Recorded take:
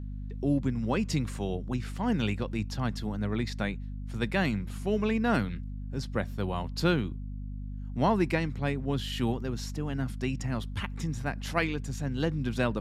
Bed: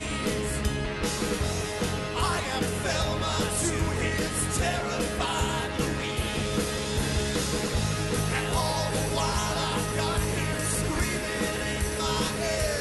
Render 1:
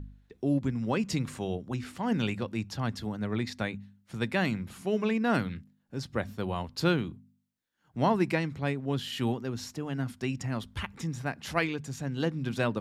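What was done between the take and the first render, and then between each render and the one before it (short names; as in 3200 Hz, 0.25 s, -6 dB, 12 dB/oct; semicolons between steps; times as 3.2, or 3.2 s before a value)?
de-hum 50 Hz, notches 5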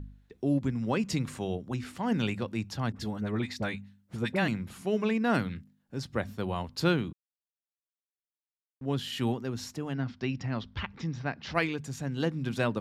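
2.92–4.48 dispersion highs, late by 41 ms, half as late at 930 Hz; 7.13–8.81 mute; 9.93–11.55 steep low-pass 5500 Hz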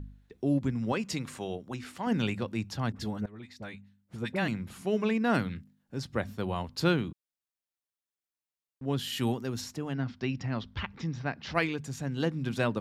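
0.92–2.07 low shelf 240 Hz -8.5 dB; 3.26–4.79 fade in, from -20 dB; 8.98–9.6 high shelf 8700 Hz -> 5400 Hz +9.5 dB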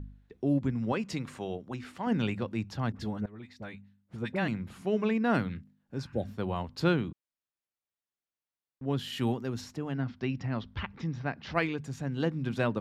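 high shelf 4600 Hz -10 dB; 6–6.24 spectral repair 860–3100 Hz both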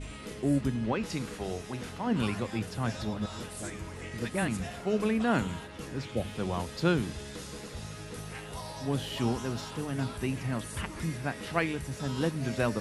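add bed -14 dB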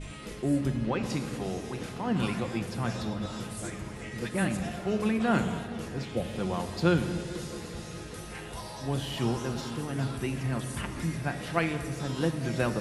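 tape echo 0.219 s, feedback 90%, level -14.5 dB, low-pass 1100 Hz; shoebox room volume 2300 m³, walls mixed, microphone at 0.85 m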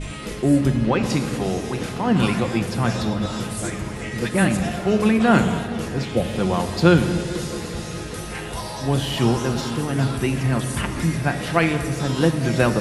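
gain +10 dB; limiter -2 dBFS, peak gain reduction 2.5 dB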